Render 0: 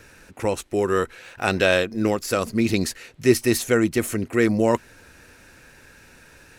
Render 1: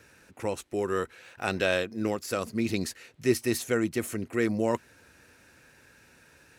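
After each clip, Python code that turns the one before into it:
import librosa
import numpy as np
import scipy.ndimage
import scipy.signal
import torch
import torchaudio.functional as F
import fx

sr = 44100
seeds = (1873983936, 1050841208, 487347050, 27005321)

y = scipy.signal.sosfilt(scipy.signal.butter(2, 69.0, 'highpass', fs=sr, output='sos'), x)
y = F.gain(torch.from_numpy(y), -7.5).numpy()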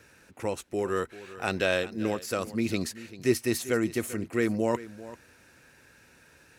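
y = x + 10.0 ** (-16.5 / 20.0) * np.pad(x, (int(391 * sr / 1000.0), 0))[:len(x)]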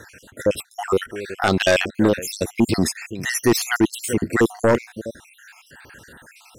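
y = fx.spec_dropout(x, sr, seeds[0], share_pct=60)
y = fx.fold_sine(y, sr, drive_db=8, ceiling_db=-12.0)
y = F.gain(torch.from_numpy(y), 3.0).numpy()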